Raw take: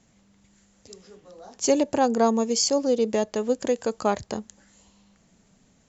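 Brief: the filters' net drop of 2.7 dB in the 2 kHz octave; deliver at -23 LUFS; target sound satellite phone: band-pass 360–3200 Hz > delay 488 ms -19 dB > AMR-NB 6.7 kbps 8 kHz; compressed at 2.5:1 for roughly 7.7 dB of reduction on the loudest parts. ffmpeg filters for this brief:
-af "equalizer=f=2000:t=o:g=-3,acompressor=threshold=0.0447:ratio=2.5,highpass=360,lowpass=3200,aecho=1:1:488:0.112,volume=3.35" -ar 8000 -c:a libopencore_amrnb -b:a 6700

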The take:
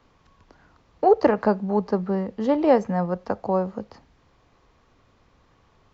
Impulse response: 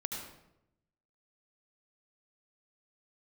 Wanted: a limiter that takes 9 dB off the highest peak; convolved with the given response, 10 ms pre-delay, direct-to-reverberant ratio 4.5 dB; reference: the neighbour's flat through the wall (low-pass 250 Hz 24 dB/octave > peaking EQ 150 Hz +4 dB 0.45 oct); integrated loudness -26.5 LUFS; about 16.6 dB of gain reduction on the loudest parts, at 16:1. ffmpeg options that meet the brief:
-filter_complex "[0:a]acompressor=threshold=0.0398:ratio=16,alimiter=level_in=1.26:limit=0.0631:level=0:latency=1,volume=0.794,asplit=2[s0][s1];[1:a]atrim=start_sample=2205,adelay=10[s2];[s1][s2]afir=irnorm=-1:irlink=0,volume=0.501[s3];[s0][s3]amix=inputs=2:normalize=0,lowpass=f=250:w=0.5412,lowpass=f=250:w=1.3066,equalizer=f=150:t=o:w=0.45:g=4,volume=3.35"

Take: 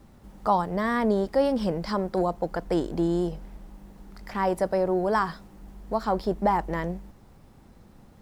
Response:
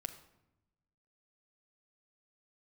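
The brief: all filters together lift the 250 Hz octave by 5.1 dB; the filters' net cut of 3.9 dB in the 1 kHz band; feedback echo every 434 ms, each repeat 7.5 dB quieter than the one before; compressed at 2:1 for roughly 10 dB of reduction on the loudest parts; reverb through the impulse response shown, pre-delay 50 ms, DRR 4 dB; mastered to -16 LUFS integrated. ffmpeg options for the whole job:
-filter_complex "[0:a]equalizer=f=250:t=o:g=7.5,equalizer=f=1000:t=o:g=-5.5,acompressor=threshold=0.0178:ratio=2,aecho=1:1:434|868|1302|1736|2170:0.422|0.177|0.0744|0.0312|0.0131,asplit=2[s0][s1];[1:a]atrim=start_sample=2205,adelay=50[s2];[s1][s2]afir=irnorm=-1:irlink=0,volume=0.794[s3];[s0][s3]amix=inputs=2:normalize=0,volume=6.31"

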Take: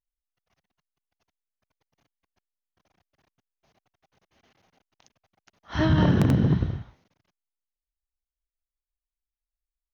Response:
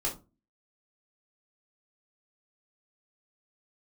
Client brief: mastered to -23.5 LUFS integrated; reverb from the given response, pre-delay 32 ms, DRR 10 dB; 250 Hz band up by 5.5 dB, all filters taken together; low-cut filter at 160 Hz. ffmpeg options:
-filter_complex "[0:a]highpass=160,equalizer=f=250:t=o:g=9,asplit=2[s0][s1];[1:a]atrim=start_sample=2205,adelay=32[s2];[s1][s2]afir=irnorm=-1:irlink=0,volume=0.178[s3];[s0][s3]amix=inputs=2:normalize=0,volume=0.596"

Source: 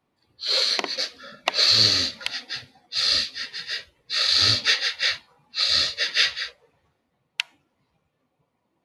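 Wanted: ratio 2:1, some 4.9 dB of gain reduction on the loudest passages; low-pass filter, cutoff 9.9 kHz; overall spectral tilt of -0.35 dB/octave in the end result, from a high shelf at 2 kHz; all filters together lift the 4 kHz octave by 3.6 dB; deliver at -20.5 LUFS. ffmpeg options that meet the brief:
-af "lowpass=9900,highshelf=f=2000:g=-5.5,equalizer=f=4000:t=o:g=9,acompressor=threshold=0.112:ratio=2,volume=1.12"

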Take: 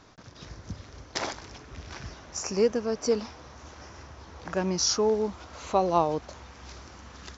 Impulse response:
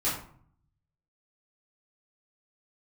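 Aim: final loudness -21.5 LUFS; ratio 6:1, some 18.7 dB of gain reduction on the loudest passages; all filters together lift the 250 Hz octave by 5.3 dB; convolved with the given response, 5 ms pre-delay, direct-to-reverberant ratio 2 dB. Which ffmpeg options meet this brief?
-filter_complex "[0:a]equalizer=f=250:t=o:g=7,acompressor=threshold=0.0141:ratio=6,asplit=2[s0][s1];[1:a]atrim=start_sample=2205,adelay=5[s2];[s1][s2]afir=irnorm=-1:irlink=0,volume=0.282[s3];[s0][s3]amix=inputs=2:normalize=0,volume=8.41"

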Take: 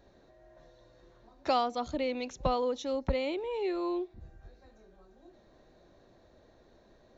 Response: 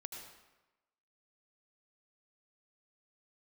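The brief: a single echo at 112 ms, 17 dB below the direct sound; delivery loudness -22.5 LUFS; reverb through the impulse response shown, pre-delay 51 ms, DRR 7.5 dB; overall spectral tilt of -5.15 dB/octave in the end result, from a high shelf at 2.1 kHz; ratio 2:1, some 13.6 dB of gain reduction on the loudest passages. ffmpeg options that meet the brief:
-filter_complex "[0:a]highshelf=f=2100:g=-6,acompressor=threshold=0.00282:ratio=2,aecho=1:1:112:0.141,asplit=2[s0][s1];[1:a]atrim=start_sample=2205,adelay=51[s2];[s1][s2]afir=irnorm=-1:irlink=0,volume=0.596[s3];[s0][s3]amix=inputs=2:normalize=0,volume=13.3"

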